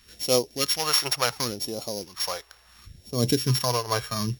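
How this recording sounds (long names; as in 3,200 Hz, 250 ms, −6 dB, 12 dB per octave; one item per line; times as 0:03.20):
a buzz of ramps at a fixed pitch in blocks of 8 samples
phaser sweep stages 2, 0.71 Hz, lowest notch 210–1,500 Hz
amplitude modulation by smooth noise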